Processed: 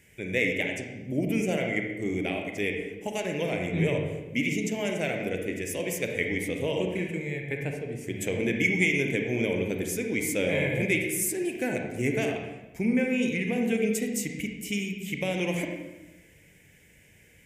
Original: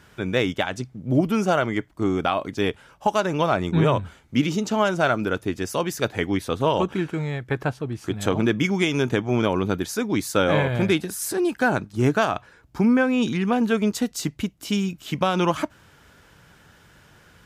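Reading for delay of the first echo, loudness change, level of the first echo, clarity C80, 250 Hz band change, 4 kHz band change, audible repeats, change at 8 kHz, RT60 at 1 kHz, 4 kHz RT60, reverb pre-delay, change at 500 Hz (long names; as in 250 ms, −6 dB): no echo audible, −5.0 dB, no echo audible, 5.5 dB, −6.0 dB, −7.0 dB, no echo audible, 0.0 dB, 1.0 s, 0.85 s, 34 ms, −5.5 dB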